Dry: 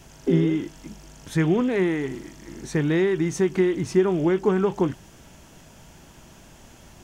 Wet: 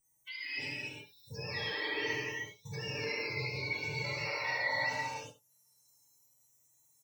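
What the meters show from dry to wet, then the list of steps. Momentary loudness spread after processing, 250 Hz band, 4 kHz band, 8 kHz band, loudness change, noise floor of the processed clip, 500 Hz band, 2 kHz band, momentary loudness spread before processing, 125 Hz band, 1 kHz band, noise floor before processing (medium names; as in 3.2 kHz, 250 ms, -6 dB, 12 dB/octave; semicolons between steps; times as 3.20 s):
11 LU, -27.0 dB, +2.5 dB, -10.5 dB, -12.5 dB, -71 dBFS, -19.0 dB, +0.5 dB, 13 LU, -16.5 dB, -6.0 dB, -50 dBFS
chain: spectrum inverted on a logarithmic axis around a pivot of 900 Hz; gate -35 dBFS, range -19 dB; comb 6.7 ms, depth 92%; reverse; compression, threshold -30 dBFS, peak gain reduction 13.5 dB; reverse; peak limiter -32 dBFS, peak gain reduction 11.5 dB; small resonant body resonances 550/890/1900 Hz, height 12 dB, ringing for 20 ms; spectral noise reduction 28 dB; on a send: delay 70 ms -15.5 dB; on the sum: gated-style reverb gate 390 ms flat, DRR -7.5 dB; tape noise reduction on one side only encoder only; trim -7.5 dB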